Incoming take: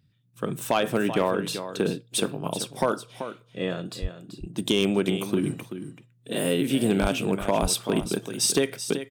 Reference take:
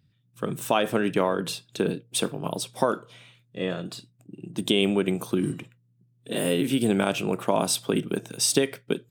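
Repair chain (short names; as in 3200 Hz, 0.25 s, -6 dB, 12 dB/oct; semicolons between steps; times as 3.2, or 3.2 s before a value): clip repair -13 dBFS; 4.01–4.13 HPF 140 Hz 24 dB/oct; 7.01–7.13 HPF 140 Hz 24 dB/oct; 7.61–7.73 HPF 140 Hz 24 dB/oct; inverse comb 0.384 s -11 dB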